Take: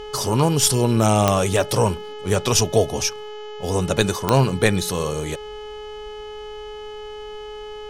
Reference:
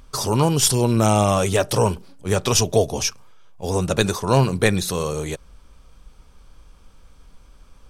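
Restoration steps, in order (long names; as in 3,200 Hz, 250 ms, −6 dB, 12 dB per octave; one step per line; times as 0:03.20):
click removal
hum removal 423 Hz, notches 17
notch filter 3,000 Hz, Q 30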